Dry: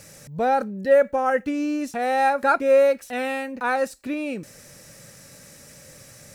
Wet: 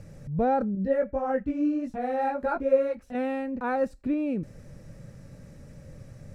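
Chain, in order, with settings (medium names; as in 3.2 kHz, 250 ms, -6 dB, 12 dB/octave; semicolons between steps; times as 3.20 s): tilt EQ -4.5 dB/octave; 0.75–3.15 s: chorus voices 4, 1.5 Hz, delay 18 ms, depth 3 ms; trim -6.5 dB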